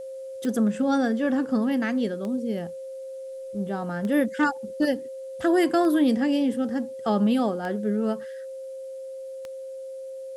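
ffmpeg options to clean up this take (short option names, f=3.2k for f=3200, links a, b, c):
-af "adeclick=t=4,bandreject=f=530:w=30,agate=range=-21dB:threshold=-29dB"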